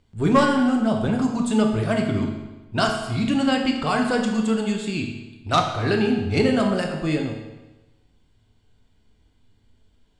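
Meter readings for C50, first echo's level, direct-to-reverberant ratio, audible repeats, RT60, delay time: 5.0 dB, no echo, 2.0 dB, no echo, 1.1 s, no echo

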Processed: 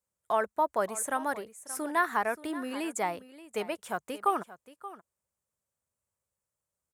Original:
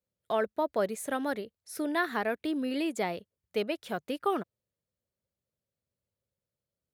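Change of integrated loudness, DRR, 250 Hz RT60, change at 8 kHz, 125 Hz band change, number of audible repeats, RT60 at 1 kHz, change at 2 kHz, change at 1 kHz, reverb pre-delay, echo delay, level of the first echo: +0.5 dB, no reverb, no reverb, +7.5 dB, -4.5 dB, 1, no reverb, +1.5 dB, +5.0 dB, no reverb, 578 ms, -16.0 dB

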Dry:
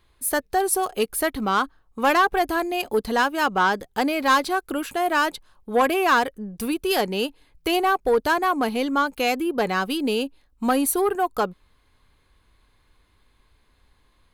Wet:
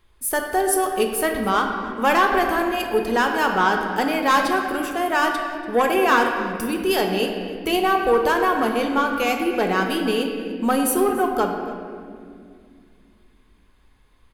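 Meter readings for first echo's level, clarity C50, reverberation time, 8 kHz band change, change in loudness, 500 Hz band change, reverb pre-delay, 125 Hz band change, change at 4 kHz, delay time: -18.5 dB, 4.0 dB, 2.2 s, +1.0 dB, +2.0 dB, +2.5 dB, 5 ms, no reading, +0.5 dB, 289 ms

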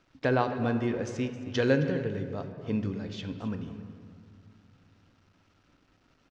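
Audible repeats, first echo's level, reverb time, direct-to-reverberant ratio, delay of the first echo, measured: 1, -15.5 dB, 2.2 s, 7.0 dB, 266 ms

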